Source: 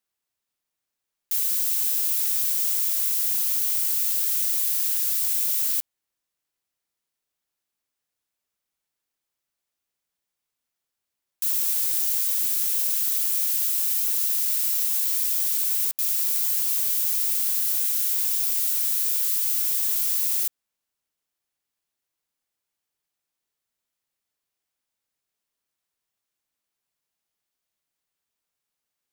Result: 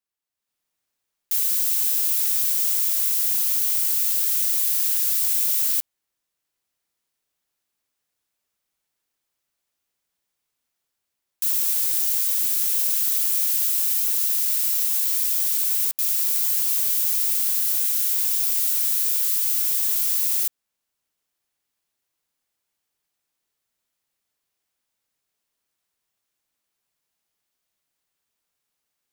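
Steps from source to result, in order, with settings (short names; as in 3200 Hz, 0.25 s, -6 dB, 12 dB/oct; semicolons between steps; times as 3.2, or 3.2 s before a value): AGC gain up to 10.5 dB; gain -6.5 dB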